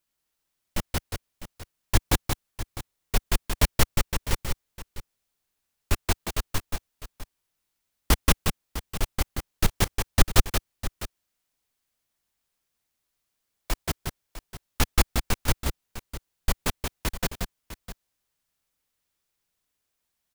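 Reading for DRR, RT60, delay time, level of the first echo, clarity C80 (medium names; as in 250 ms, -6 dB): no reverb, no reverb, 178 ms, -4.0 dB, no reverb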